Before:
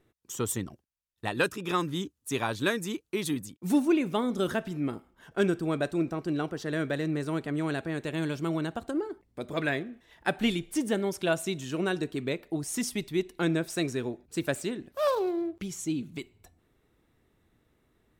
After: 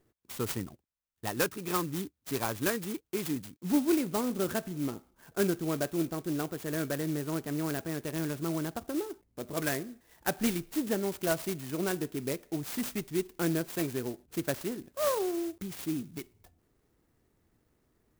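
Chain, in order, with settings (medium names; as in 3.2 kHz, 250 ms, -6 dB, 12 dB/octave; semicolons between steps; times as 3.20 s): sampling jitter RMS 0.078 ms; trim -2.5 dB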